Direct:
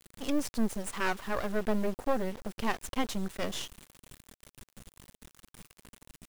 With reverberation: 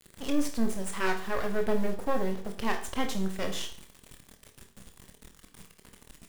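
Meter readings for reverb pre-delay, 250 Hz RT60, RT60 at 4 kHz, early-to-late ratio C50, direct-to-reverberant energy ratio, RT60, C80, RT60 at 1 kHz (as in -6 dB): 21 ms, 0.45 s, 0.45 s, 9.5 dB, 4.0 dB, 0.45 s, 14.0 dB, 0.45 s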